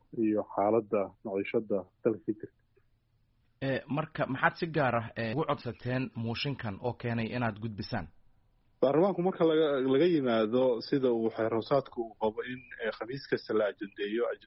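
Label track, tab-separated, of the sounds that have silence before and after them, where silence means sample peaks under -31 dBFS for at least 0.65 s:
3.620000	8.020000	sound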